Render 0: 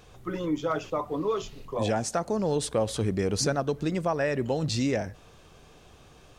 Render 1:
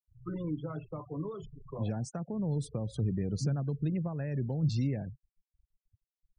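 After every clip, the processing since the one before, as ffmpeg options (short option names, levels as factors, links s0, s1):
-filter_complex "[0:a]afftfilt=real='re*gte(hypot(re,im),0.0251)':imag='im*gte(hypot(re,im),0.0251)':win_size=1024:overlap=0.75,equalizer=f=140:w=1.4:g=11,acrossover=split=290[s0][s1];[s1]acompressor=threshold=0.02:ratio=6[s2];[s0][s2]amix=inputs=2:normalize=0,volume=0.422"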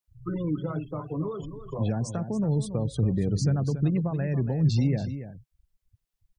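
-af "aecho=1:1:282:0.282,volume=2.11"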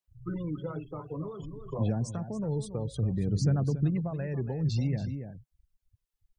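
-af "aphaser=in_gain=1:out_gain=1:delay=2.4:decay=0.35:speed=0.56:type=sinusoidal,volume=0.562"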